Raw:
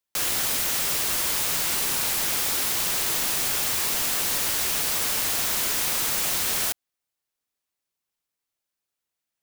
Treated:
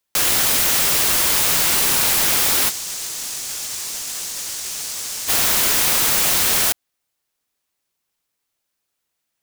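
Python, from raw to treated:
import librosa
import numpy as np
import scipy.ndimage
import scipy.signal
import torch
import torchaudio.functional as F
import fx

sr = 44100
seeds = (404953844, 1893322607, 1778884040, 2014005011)

y = fx.peak_eq(x, sr, hz=6600.0, db=11.0, octaves=1.6, at=(2.69, 5.27), fade=0.02)
y = fx.over_compress(y, sr, threshold_db=-25.0, ratio=-0.5)
y = y * 10.0 ** (5.5 / 20.0)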